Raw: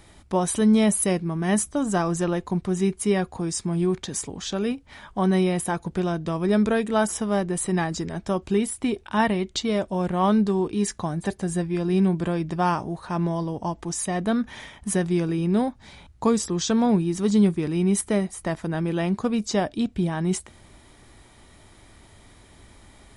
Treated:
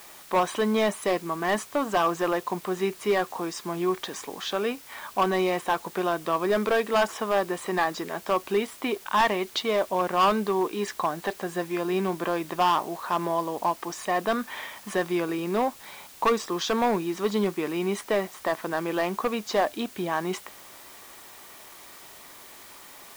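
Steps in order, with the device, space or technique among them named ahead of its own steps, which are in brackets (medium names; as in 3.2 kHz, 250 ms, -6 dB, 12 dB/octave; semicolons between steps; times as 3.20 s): drive-through speaker (band-pass 470–3400 Hz; peaking EQ 1.1 kHz +6 dB 0.26 oct; hard clipper -21 dBFS, distortion -11 dB; white noise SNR 21 dB); trim +4.5 dB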